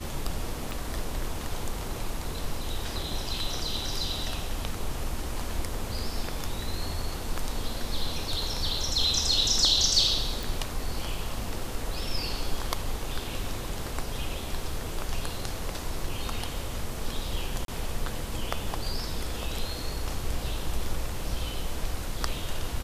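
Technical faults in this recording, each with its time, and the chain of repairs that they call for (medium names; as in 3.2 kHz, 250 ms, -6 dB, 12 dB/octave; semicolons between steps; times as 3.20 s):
0.71 s: pop
10.43 s: pop
17.65–17.68 s: dropout 32 ms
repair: de-click; interpolate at 17.65 s, 32 ms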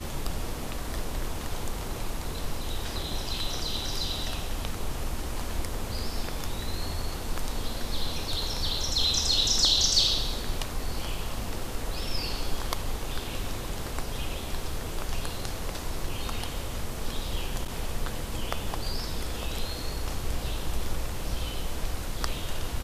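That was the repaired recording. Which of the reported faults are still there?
nothing left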